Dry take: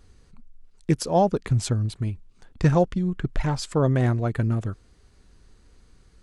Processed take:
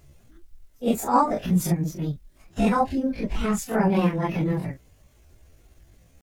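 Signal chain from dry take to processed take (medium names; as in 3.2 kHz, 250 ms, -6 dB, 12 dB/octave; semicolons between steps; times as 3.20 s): phase randomisation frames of 100 ms; word length cut 12-bit, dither triangular; pitch shift +6.5 st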